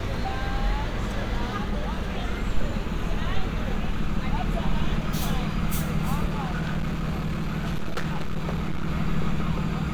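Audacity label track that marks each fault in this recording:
6.250000	8.890000	clipped -23 dBFS

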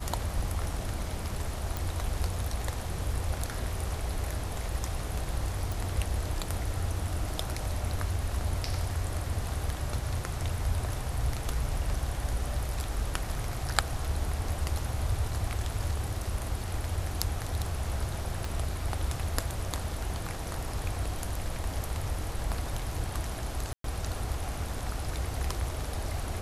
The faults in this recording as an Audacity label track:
1.770000	1.770000	pop
5.720000	5.720000	pop
18.450000	18.450000	pop
23.730000	23.840000	gap 0.113 s

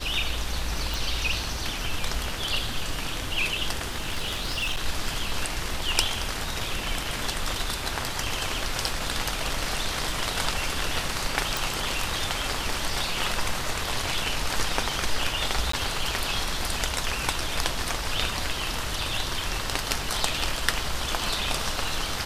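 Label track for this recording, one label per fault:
0.940000	0.940000	pop
3.890000	4.800000	clipped -23.5 dBFS
11.570000	11.570000	pop
15.720000	15.730000	gap 14 ms

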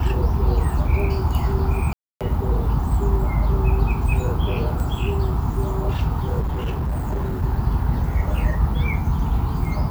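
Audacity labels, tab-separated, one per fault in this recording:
1.930000	2.210000	gap 0.277 s
6.400000	7.420000	clipped -20 dBFS

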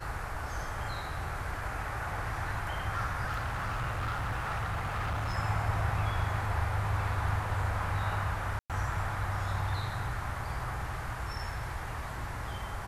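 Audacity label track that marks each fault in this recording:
3.260000	5.350000	clipped -29.5 dBFS
8.590000	8.700000	gap 0.107 s

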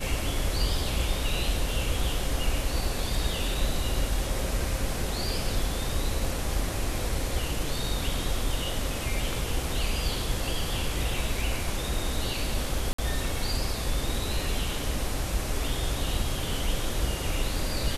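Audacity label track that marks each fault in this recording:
12.930000	12.980000	gap 54 ms

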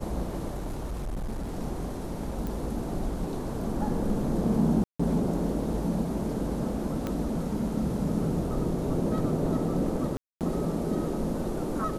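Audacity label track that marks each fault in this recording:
0.510000	1.580000	clipped -29 dBFS
2.470000	2.470000	pop
4.840000	5.000000	gap 0.155 s
7.070000	7.070000	pop -18 dBFS
10.170000	10.410000	gap 0.238 s

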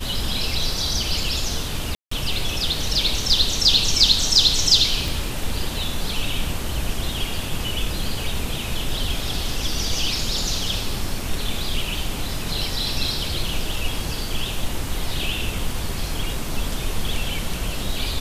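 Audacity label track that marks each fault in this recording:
1.950000	2.110000	gap 0.164 s
5.080000	5.080000	pop

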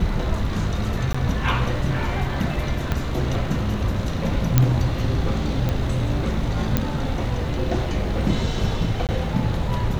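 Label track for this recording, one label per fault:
1.130000	1.150000	gap
2.920000	2.920000	pop -10 dBFS
4.580000	4.580000	pop -2 dBFS
5.690000	5.690000	pop -11 dBFS
6.770000	6.770000	pop -5 dBFS
9.070000	9.090000	gap 18 ms

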